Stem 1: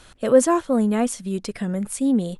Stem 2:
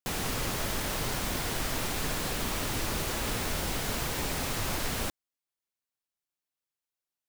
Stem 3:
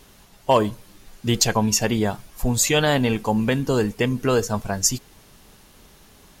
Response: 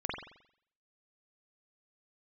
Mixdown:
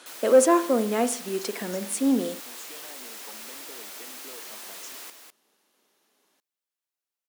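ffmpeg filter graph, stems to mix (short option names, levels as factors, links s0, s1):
-filter_complex "[0:a]acontrast=75,volume=0.422,asplit=2[s0][s1];[s1]volume=0.188[s2];[1:a]aeval=exprs='0.015*(abs(mod(val(0)/0.015+3,4)-2)-1)':c=same,volume=0.944,asplit=2[s3][s4];[s4]volume=0.447[s5];[2:a]acompressor=threshold=0.0447:ratio=6,volume=0.141[s6];[3:a]atrim=start_sample=2205[s7];[s2][s7]afir=irnorm=-1:irlink=0[s8];[s5]aecho=0:1:203:1[s9];[s0][s3][s6][s8][s9]amix=inputs=5:normalize=0,highpass=f=270:w=0.5412,highpass=f=270:w=1.3066"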